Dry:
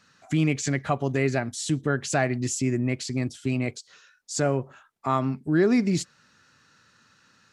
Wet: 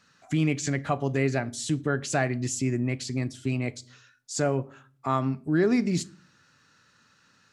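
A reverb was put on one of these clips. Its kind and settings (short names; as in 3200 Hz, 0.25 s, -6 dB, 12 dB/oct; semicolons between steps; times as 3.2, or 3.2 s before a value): shoebox room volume 370 m³, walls furnished, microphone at 0.31 m; gain -2 dB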